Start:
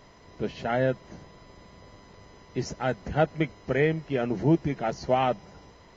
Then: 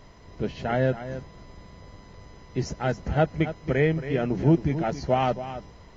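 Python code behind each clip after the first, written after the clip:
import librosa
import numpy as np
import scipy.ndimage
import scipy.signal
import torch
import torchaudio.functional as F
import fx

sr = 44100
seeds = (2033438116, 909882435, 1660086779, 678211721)

y = fx.low_shelf(x, sr, hz=120.0, db=10.0)
y = y + 10.0 ** (-12.0 / 20.0) * np.pad(y, (int(274 * sr / 1000.0), 0))[:len(y)]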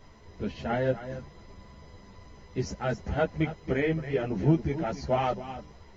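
y = fx.ensemble(x, sr)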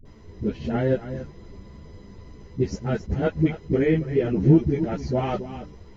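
y = fx.low_shelf_res(x, sr, hz=520.0, db=6.5, q=1.5)
y = fx.dispersion(y, sr, late='highs', ms=54.0, hz=380.0)
y = fx.attack_slew(y, sr, db_per_s=420.0)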